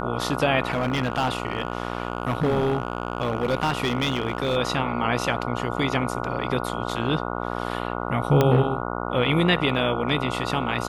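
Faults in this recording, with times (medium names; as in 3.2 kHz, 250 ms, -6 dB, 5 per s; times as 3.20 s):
buzz 60 Hz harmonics 24 -29 dBFS
0.67–4.57 s: clipped -17.5 dBFS
8.41 s: pop -6 dBFS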